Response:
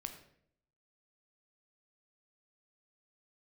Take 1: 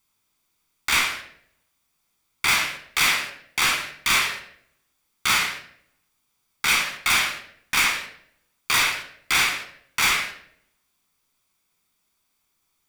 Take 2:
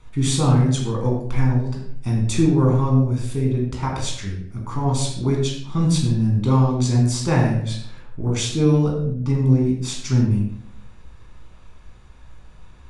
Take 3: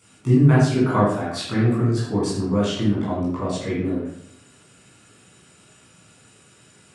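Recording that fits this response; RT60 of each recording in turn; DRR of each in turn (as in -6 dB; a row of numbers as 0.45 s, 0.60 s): 1; 0.65 s, 0.65 s, 0.65 s; 5.5 dB, -2.0 dB, -9.0 dB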